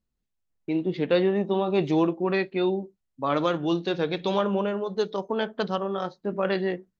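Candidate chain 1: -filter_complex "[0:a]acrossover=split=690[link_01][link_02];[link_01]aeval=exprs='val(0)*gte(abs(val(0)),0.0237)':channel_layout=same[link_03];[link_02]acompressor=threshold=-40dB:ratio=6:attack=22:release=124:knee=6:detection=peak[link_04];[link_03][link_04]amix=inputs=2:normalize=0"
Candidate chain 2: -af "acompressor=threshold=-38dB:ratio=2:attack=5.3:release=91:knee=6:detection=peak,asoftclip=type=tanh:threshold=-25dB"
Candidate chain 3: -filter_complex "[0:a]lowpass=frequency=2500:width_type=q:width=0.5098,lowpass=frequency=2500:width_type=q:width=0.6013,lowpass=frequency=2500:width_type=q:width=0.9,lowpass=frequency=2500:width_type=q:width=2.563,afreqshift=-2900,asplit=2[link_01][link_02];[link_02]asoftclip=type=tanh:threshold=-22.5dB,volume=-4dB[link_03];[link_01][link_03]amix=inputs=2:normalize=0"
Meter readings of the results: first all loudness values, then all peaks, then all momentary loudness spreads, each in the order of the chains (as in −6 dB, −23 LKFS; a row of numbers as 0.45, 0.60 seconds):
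−27.5, −36.5, −20.0 LKFS; −12.5, −25.5, −9.5 dBFS; 8, 4, 7 LU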